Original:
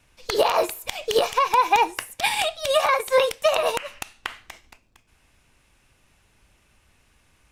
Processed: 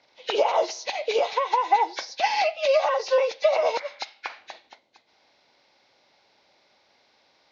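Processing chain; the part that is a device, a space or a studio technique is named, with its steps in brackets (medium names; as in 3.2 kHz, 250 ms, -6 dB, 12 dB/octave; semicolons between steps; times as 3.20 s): hearing aid with frequency lowering (knee-point frequency compression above 1.4 kHz 1.5:1; compression 3:1, threshold -24 dBFS, peak gain reduction 8.5 dB; cabinet simulation 350–6600 Hz, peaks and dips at 570 Hz +6 dB, 810 Hz +6 dB, 1.2 kHz -5 dB, 1.8 kHz -5 dB, 4 kHz +5 dB); 3.82–4.38 s: bass shelf 430 Hz -7.5 dB; trim +1.5 dB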